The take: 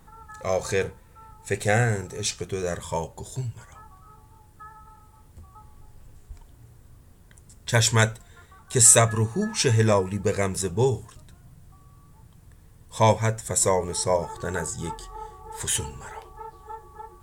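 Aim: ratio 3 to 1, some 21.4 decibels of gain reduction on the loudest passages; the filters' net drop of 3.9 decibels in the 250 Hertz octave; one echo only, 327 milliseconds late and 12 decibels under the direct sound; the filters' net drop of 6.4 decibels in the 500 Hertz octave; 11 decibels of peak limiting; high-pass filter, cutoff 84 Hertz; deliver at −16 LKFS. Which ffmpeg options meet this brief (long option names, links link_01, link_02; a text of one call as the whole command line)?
ffmpeg -i in.wav -af "highpass=84,equalizer=frequency=250:width_type=o:gain=-3.5,equalizer=frequency=500:width_type=o:gain=-7,acompressor=threshold=-41dB:ratio=3,alimiter=level_in=10dB:limit=-24dB:level=0:latency=1,volume=-10dB,aecho=1:1:327:0.251,volume=29.5dB" out.wav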